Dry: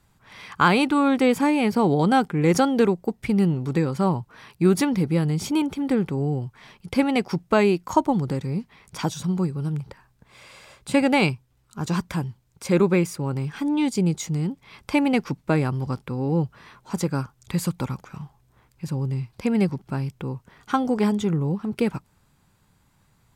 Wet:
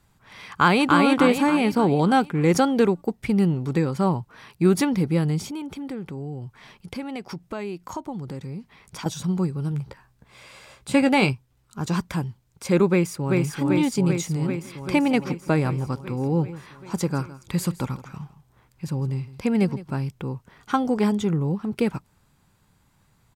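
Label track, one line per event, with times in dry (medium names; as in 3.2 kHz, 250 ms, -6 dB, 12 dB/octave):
0.500000	0.980000	echo throw 290 ms, feedback 50%, level -2.5 dB
5.410000	9.060000	compression 2.5:1, threshold -34 dBFS
9.700000	11.330000	doubling 15 ms -10 dB
12.890000	13.390000	echo throw 390 ms, feedback 75%, level -2.5 dB
14.370000	20.050000	delay 162 ms -17 dB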